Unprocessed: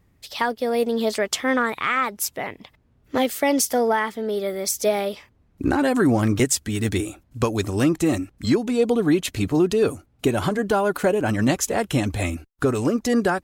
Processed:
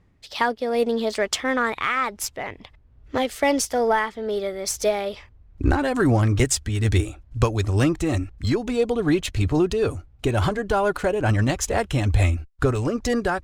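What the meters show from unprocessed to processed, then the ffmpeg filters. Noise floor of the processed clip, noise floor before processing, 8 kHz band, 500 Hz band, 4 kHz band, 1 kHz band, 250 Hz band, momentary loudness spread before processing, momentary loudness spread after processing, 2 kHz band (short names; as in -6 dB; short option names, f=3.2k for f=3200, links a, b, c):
-54 dBFS, -61 dBFS, -2.0 dB, -1.0 dB, -0.5 dB, 0.0 dB, -3.0 dB, 7 LU, 6 LU, 0.0 dB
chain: -af "tremolo=f=2.3:d=0.29,adynamicsmooth=sensitivity=6.5:basefreq=6.4k,asubboost=boost=8.5:cutoff=69,volume=1.5dB"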